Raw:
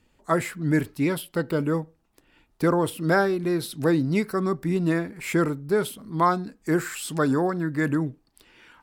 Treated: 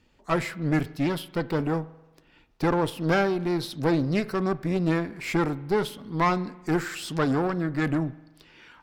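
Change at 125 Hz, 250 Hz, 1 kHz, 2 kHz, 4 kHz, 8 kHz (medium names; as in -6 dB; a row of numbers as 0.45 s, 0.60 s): -0.5 dB, -1.5 dB, -1.5 dB, -1.5 dB, +1.5 dB, -6.0 dB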